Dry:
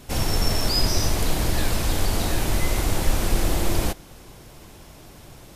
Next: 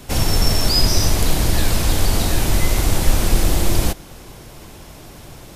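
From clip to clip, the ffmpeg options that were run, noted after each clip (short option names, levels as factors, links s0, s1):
-filter_complex "[0:a]acrossover=split=230|3000[s0][s1][s2];[s1]acompressor=threshold=0.0316:ratio=6[s3];[s0][s3][s2]amix=inputs=3:normalize=0,volume=2"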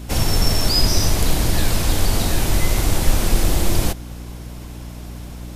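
-af "aeval=exprs='val(0)+0.0282*(sin(2*PI*60*n/s)+sin(2*PI*2*60*n/s)/2+sin(2*PI*3*60*n/s)/3+sin(2*PI*4*60*n/s)/4+sin(2*PI*5*60*n/s)/5)':c=same,volume=0.891"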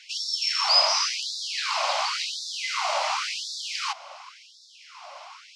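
-af "highpass=390,equalizer=f=430:t=q:w=4:g=7,equalizer=f=1100:t=q:w=4:g=6,equalizer=f=1700:t=q:w=4:g=-10,equalizer=f=3600:t=q:w=4:g=-7,lowpass=f=5000:w=0.5412,lowpass=f=5000:w=1.3066,afftfilt=real='re*gte(b*sr/1024,520*pow(3500/520,0.5+0.5*sin(2*PI*0.92*pts/sr)))':imag='im*gte(b*sr/1024,520*pow(3500/520,0.5+0.5*sin(2*PI*0.92*pts/sr)))':win_size=1024:overlap=0.75,volume=1.68"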